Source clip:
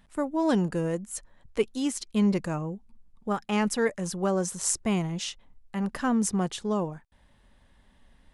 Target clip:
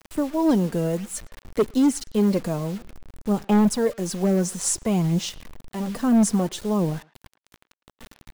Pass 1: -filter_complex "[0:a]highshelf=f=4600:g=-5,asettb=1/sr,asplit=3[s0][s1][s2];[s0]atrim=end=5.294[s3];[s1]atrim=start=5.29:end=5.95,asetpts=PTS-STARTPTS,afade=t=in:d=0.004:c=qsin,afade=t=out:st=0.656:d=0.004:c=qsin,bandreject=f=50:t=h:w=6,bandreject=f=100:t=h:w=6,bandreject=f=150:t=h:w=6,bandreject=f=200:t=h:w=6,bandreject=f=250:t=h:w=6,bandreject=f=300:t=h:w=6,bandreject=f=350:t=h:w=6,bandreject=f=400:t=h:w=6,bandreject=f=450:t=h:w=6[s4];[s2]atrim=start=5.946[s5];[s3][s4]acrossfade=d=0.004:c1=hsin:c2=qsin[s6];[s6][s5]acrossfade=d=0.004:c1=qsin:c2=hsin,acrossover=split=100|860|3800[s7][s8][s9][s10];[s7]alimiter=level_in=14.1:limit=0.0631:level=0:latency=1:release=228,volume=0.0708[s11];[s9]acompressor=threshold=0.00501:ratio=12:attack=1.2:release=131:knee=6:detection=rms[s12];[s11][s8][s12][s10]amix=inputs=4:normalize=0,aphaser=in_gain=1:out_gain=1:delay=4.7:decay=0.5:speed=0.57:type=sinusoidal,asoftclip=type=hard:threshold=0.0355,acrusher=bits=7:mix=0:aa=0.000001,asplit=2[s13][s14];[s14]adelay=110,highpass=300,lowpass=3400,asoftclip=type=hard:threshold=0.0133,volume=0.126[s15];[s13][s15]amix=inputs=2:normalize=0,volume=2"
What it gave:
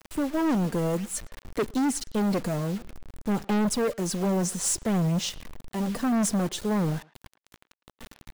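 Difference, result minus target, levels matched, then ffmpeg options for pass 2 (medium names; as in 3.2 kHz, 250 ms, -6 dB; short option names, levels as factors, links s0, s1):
hard clipper: distortion +9 dB
-filter_complex "[0:a]highshelf=f=4600:g=-5,asettb=1/sr,asplit=3[s0][s1][s2];[s0]atrim=end=5.294[s3];[s1]atrim=start=5.29:end=5.95,asetpts=PTS-STARTPTS,afade=t=in:d=0.004:c=qsin,afade=t=out:st=0.656:d=0.004:c=qsin,bandreject=f=50:t=h:w=6,bandreject=f=100:t=h:w=6,bandreject=f=150:t=h:w=6,bandreject=f=200:t=h:w=6,bandreject=f=250:t=h:w=6,bandreject=f=300:t=h:w=6,bandreject=f=350:t=h:w=6,bandreject=f=400:t=h:w=6,bandreject=f=450:t=h:w=6[s4];[s2]atrim=start=5.946[s5];[s3][s4]acrossfade=d=0.004:c1=hsin:c2=qsin[s6];[s6][s5]acrossfade=d=0.004:c1=qsin:c2=hsin,acrossover=split=100|860|3800[s7][s8][s9][s10];[s7]alimiter=level_in=14.1:limit=0.0631:level=0:latency=1:release=228,volume=0.0708[s11];[s9]acompressor=threshold=0.00501:ratio=12:attack=1.2:release=131:knee=6:detection=rms[s12];[s11][s8][s12][s10]amix=inputs=4:normalize=0,aphaser=in_gain=1:out_gain=1:delay=4.7:decay=0.5:speed=0.57:type=sinusoidal,asoftclip=type=hard:threshold=0.1,acrusher=bits=7:mix=0:aa=0.000001,asplit=2[s13][s14];[s14]adelay=110,highpass=300,lowpass=3400,asoftclip=type=hard:threshold=0.0133,volume=0.126[s15];[s13][s15]amix=inputs=2:normalize=0,volume=2"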